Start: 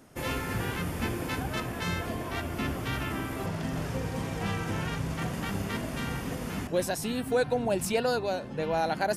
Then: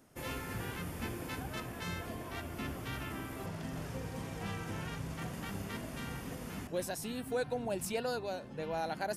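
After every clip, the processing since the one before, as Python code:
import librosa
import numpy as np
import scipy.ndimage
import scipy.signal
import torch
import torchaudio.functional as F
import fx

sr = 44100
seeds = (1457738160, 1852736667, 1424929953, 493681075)

y = fx.high_shelf(x, sr, hz=8600.0, db=4.5)
y = F.gain(torch.from_numpy(y), -8.5).numpy()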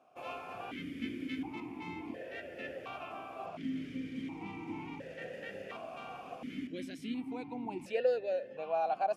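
y = fx.vowel_held(x, sr, hz=1.4)
y = F.gain(torch.from_numpy(y), 11.5).numpy()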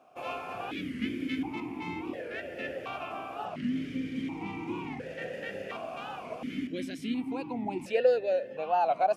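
y = fx.record_warp(x, sr, rpm=45.0, depth_cents=160.0)
y = F.gain(torch.from_numpy(y), 6.0).numpy()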